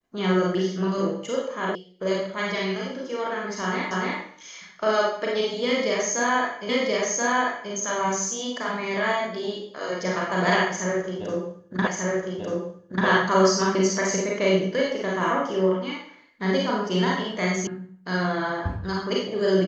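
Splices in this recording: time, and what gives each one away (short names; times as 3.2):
1.75 sound cut off
3.91 repeat of the last 0.29 s
6.69 repeat of the last 1.03 s
11.87 repeat of the last 1.19 s
17.67 sound cut off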